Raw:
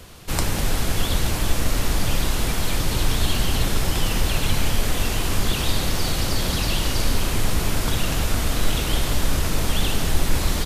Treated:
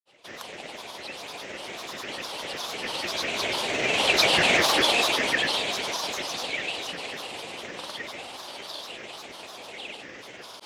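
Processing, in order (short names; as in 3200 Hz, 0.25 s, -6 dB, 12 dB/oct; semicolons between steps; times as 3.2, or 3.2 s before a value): Doppler pass-by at 4.53, 12 m/s, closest 5.5 m; speaker cabinet 360–8400 Hz, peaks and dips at 480 Hz +6 dB, 750 Hz +8 dB, 1400 Hz -5 dB, 2600 Hz +10 dB, 3700 Hz +4 dB, 5900 Hz -7 dB; grains, pitch spread up and down by 7 st; gain +6.5 dB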